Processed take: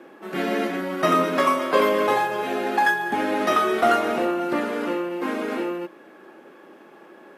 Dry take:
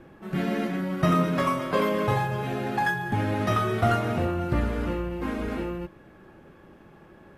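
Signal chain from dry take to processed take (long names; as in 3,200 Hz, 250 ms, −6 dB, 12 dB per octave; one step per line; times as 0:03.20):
high-pass filter 270 Hz 24 dB per octave
level +6 dB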